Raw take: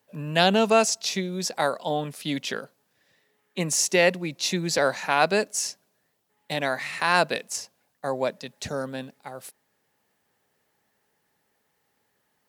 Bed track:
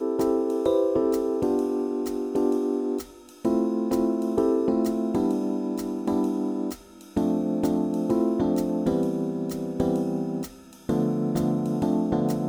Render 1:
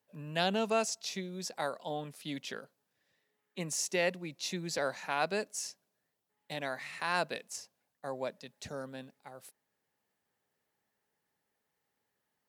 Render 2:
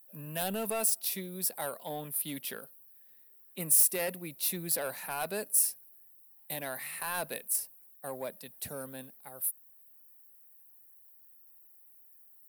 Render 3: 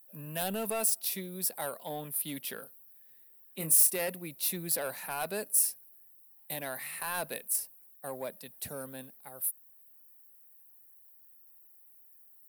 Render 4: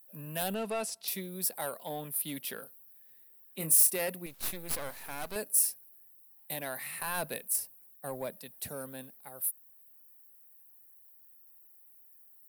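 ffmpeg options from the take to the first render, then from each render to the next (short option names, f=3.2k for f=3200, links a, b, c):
-af "volume=-11dB"
-af "asoftclip=type=tanh:threshold=-28dB,aexciter=amount=11:drive=9.7:freq=9.7k"
-filter_complex "[0:a]asettb=1/sr,asplit=3[a][b][c];[a]atrim=end=2.564[d];[b]atrim=start=2.56:end=3.91,asetpts=PTS-STARTPTS,afade=t=in:d=0.004:c=qsin,afade=t=out:st=1.346:d=0.004:c=qsin,asplit=2[e][f];[f]adelay=25,volume=-7.5dB[g];[e][g]amix=inputs=2:normalize=0,atrim=end_sample=59535[h];[c]atrim=start=3.906[i];[d][h]acrossfade=d=0.004:c1=hsin:c2=qsin[j];[j][i]acrossfade=d=0.004:c1=qsin:c2=hsin"
-filter_complex "[0:a]asettb=1/sr,asplit=3[a][b][c];[a]atrim=end=0.544[d];[b]atrim=start=0.54:end=1.08,asetpts=PTS-STARTPTS,afade=t=in:d=0.004:c=qsin,afade=t=out:st=0.536:d=0.004:c=qsin,lowpass=5.7k[e];[c]atrim=start=1.076[f];[d][e]acrossfade=d=0.004:c1=hsin:c2=qsin[g];[g][f]acrossfade=d=0.004:c1=qsin:c2=hsin,asettb=1/sr,asplit=3[h][i][j];[h]atrim=end=4.264[k];[i]atrim=start=4.26:end=5.36,asetpts=PTS-STARTPTS,afade=t=in:d=0.004:c=qsin,afade=t=out:st=1.096:d=0.004:c=qsin,aeval=exprs='max(val(0),0)':c=same[l];[j]atrim=start=5.356[m];[k][l]acrossfade=d=0.004:c1=hsin:c2=qsin[n];[n][m]acrossfade=d=0.004:c1=qsin:c2=hsin,asettb=1/sr,asplit=3[o][p][q];[o]atrim=end=6.864[r];[p]atrim=start=6.86:end=8.41,asetpts=PTS-STARTPTS,afade=t=in:d=0.004:c=qsin,afade=t=out:st=1.546:d=0.004:c=qsin,lowshelf=f=130:g=10.5[s];[q]atrim=start=8.406[t];[r][s]acrossfade=d=0.004:c1=hsin:c2=qsin[u];[u][t]acrossfade=d=0.004:c1=qsin:c2=hsin"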